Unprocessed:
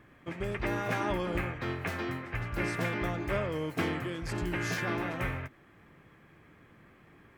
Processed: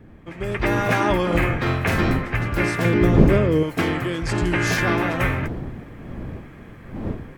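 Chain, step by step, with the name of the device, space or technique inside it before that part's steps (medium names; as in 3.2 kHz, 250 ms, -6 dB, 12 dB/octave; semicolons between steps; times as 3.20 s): 1.26–2.16 s: doubling 47 ms -4.5 dB; 2.85–3.63 s: resonant low shelf 530 Hz +7.5 dB, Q 1.5; 4.23–4.67 s: low-pass 10 kHz 24 dB/octave; smartphone video outdoors (wind noise 230 Hz; level rider gain up to 12 dB; AAC 96 kbps 48 kHz)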